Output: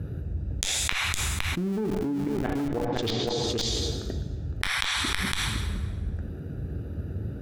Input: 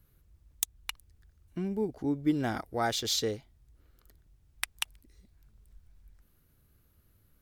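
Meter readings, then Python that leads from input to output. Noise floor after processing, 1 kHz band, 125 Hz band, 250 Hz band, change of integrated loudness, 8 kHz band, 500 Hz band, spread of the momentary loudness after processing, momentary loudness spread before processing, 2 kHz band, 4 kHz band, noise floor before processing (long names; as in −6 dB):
−37 dBFS, +3.5 dB, +12.5 dB, +4.5 dB, +4.0 dB, +7.0 dB, +5.5 dB, 9 LU, 12 LU, +11.5 dB, +8.0 dB, −67 dBFS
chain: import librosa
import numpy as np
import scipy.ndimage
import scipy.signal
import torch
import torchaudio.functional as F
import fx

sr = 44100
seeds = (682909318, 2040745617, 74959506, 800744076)

p1 = fx.wiener(x, sr, points=41)
p2 = scipy.signal.sosfilt(scipy.signal.butter(4, 60.0, 'highpass', fs=sr, output='sos'), p1)
p3 = fx.low_shelf(p2, sr, hz=83.0, db=-5.0)
p4 = fx.gate_flip(p3, sr, shuts_db=-21.0, range_db=-40)
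p5 = fx.high_shelf(p4, sr, hz=2700.0, db=5.0)
p6 = p5 + 10.0 ** (-11.5 / 20.0) * np.pad(p5, (int(511 * sr / 1000.0), 0))[:len(p5)]
p7 = fx.rev_plate(p6, sr, seeds[0], rt60_s=1.3, hf_ratio=0.8, predelay_ms=0, drr_db=8.5)
p8 = fx.env_lowpass_down(p7, sr, base_hz=2200.0, full_db=-32.0)
p9 = fx.lowpass(p8, sr, hz=3800.0, slope=6)
p10 = fx.comb_fb(p9, sr, f0_hz=95.0, decay_s=0.18, harmonics='all', damping=0.0, mix_pct=50)
p11 = fx.schmitt(p10, sr, flips_db=-42.5)
p12 = p10 + F.gain(torch.from_numpy(p11), -6.0).numpy()
y = fx.env_flatten(p12, sr, amount_pct=100)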